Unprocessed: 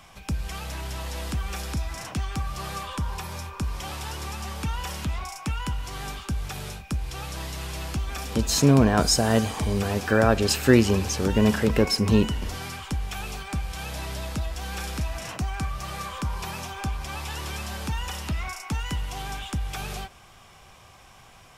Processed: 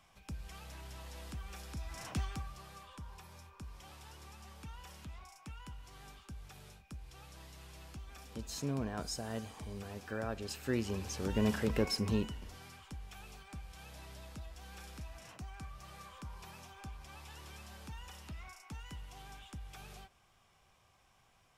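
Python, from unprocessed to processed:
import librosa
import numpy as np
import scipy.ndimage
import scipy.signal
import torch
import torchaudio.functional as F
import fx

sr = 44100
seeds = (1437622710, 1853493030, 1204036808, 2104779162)

y = fx.gain(x, sr, db=fx.line((1.71, -15.5), (2.18, -7.0), (2.65, -19.5), (10.56, -19.5), (11.39, -11.0), (12.0, -11.0), (12.47, -18.0)))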